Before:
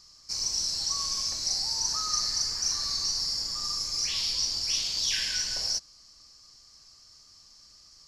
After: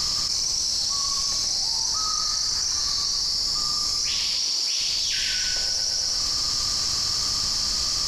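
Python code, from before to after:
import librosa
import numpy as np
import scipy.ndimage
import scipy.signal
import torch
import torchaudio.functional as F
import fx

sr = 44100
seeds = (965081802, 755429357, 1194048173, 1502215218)

y = fx.highpass(x, sr, hz=fx.line((4.27, 150.0), (4.79, 440.0)), slope=12, at=(4.27, 4.79), fade=0.02)
y = fx.echo_feedback(y, sr, ms=118, feedback_pct=42, wet_db=-3.5)
y = fx.env_flatten(y, sr, amount_pct=100)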